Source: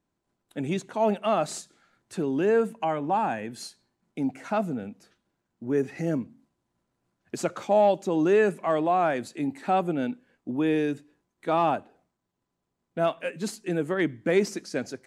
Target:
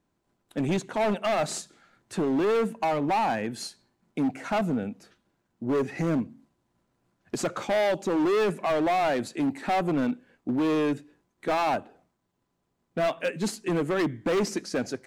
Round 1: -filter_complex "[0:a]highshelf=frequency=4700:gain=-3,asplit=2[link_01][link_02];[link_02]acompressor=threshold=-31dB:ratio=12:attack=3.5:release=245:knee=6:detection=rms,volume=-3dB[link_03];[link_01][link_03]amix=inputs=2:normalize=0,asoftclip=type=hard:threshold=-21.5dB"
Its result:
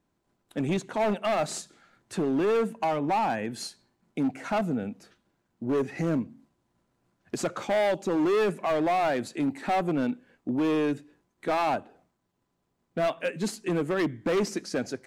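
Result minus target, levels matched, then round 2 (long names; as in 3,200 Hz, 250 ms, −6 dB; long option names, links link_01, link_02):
downward compressor: peak gain reduction +9.5 dB
-filter_complex "[0:a]highshelf=frequency=4700:gain=-3,asplit=2[link_01][link_02];[link_02]acompressor=threshold=-20.5dB:ratio=12:attack=3.5:release=245:knee=6:detection=rms,volume=-3dB[link_03];[link_01][link_03]amix=inputs=2:normalize=0,asoftclip=type=hard:threshold=-21.5dB"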